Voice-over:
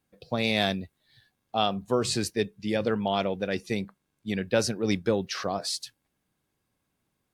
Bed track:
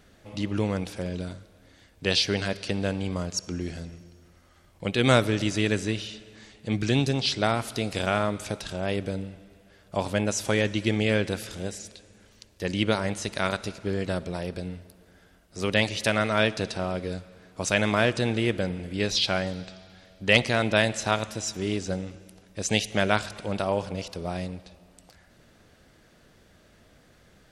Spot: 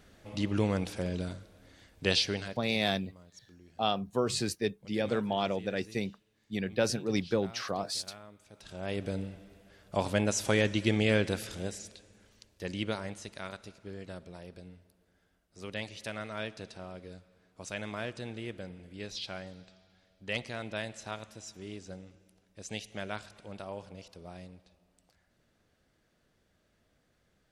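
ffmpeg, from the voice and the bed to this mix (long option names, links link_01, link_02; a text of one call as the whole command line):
ffmpeg -i stem1.wav -i stem2.wav -filter_complex "[0:a]adelay=2250,volume=-4dB[link_01];[1:a]volume=20.5dB,afade=type=out:start_time=2.04:duration=0.61:silence=0.0707946,afade=type=in:start_time=8.51:duration=0.72:silence=0.0749894,afade=type=out:start_time=11.29:duration=2.17:silence=0.237137[link_02];[link_01][link_02]amix=inputs=2:normalize=0" out.wav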